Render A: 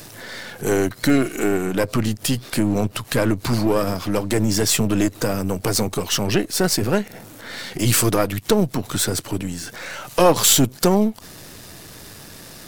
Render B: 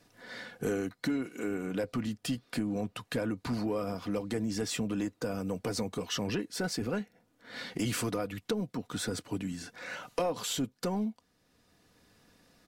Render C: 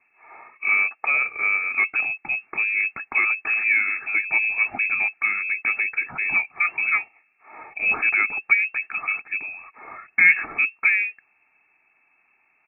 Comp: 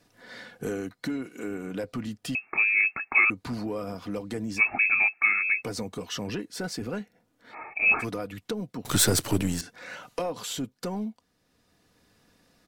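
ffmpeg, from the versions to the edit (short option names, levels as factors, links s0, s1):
-filter_complex "[2:a]asplit=3[s0][s1][s2];[1:a]asplit=5[s3][s4][s5][s6][s7];[s3]atrim=end=2.352[s8];[s0]atrim=start=2.348:end=3.302[s9];[s4]atrim=start=3.298:end=4.62[s10];[s1]atrim=start=4.56:end=5.66[s11];[s5]atrim=start=5.6:end=7.55[s12];[s2]atrim=start=7.49:end=8.05[s13];[s6]atrim=start=7.99:end=8.852[s14];[0:a]atrim=start=8.848:end=9.612[s15];[s7]atrim=start=9.608[s16];[s8][s9]acrossfade=d=0.004:c1=hsin:c2=hsin[s17];[s17][s10]acrossfade=d=0.004:c1=hsin:c2=hsin[s18];[s18][s11]acrossfade=d=0.06:c1=tri:c2=tri[s19];[s19][s12]acrossfade=d=0.06:c1=tri:c2=tri[s20];[s20][s13]acrossfade=d=0.06:c1=tri:c2=tri[s21];[s21][s14]acrossfade=d=0.06:c1=tri:c2=tri[s22];[s22][s15]acrossfade=d=0.004:c1=hsin:c2=hsin[s23];[s23][s16]acrossfade=d=0.004:c1=hsin:c2=hsin"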